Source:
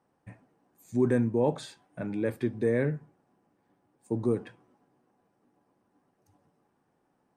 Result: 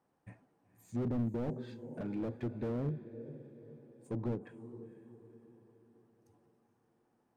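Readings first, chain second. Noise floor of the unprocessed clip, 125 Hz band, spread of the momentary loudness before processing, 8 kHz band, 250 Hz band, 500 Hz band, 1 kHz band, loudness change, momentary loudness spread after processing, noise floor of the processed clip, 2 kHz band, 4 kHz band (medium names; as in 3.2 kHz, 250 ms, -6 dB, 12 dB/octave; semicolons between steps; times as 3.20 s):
-74 dBFS, -5.5 dB, 14 LU, no reading, -7.5 dB, -12.0 dB, -10.0 dB, -10.0 dB, 22 LU, -77 dBFS, -16.0 dB, under -10 dB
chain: low-pass that closes with the level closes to 460 Hz, closed at -23 dBFS; echo that smears into a reverb 496 ms, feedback 46%, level -14.5 dB; slew-rate limiter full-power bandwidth 13 Hz; trim -5 dB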